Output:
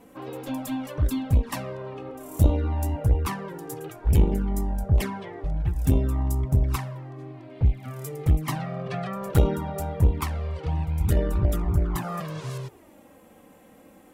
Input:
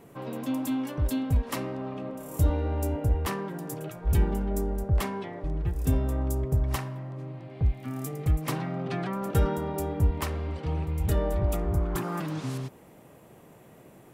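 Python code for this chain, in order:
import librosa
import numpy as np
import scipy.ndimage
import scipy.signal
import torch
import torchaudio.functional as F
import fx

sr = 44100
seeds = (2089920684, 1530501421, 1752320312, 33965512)

y = fx.cheby_harmonics(x, sr, harmonics=(2, 3, 4, 7), levels_db=(-9, -39, -27, -43), full_scale_db=-12.5)
y = fx.env_flanger(y, sr, rest_ms=4.1, full_db=-19.0)
y = F.gain(torch.from_numpy(y), 4.5).numpy()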